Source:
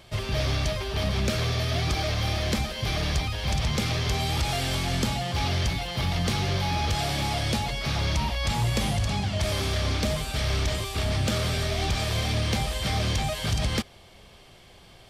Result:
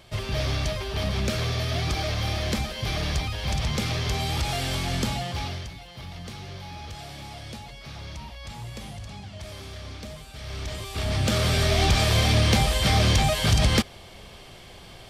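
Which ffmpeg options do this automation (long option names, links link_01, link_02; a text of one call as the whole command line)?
ffmpeg -i in.wav -af "volume=18dB,afade=type=out:start_time=5.19:duration=0.49:silence=0.251189,afade=type=in:start_time=10.38:duration=0.46:silence=0.398107,afade=type=in:start_time=10.84:duration=0.91:silence=0.298538" out.wav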